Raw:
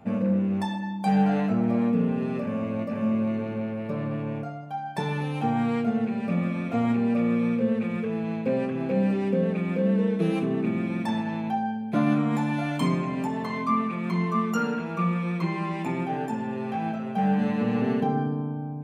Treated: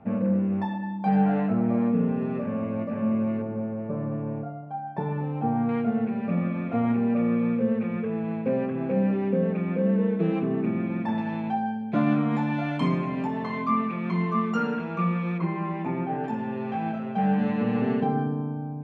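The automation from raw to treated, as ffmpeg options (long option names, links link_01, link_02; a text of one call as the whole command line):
ffmpeg -i in.wav -af "asetnsamples=nb_out_samples=441:pad=0,asendcmd='3.42 lowpass f 1100;5.69 lowpass f 2100;11.18 lowpass f 3500;15.38 lowpass f 1800;16.24 lowpass f 3400',lowpass=2000" out.wav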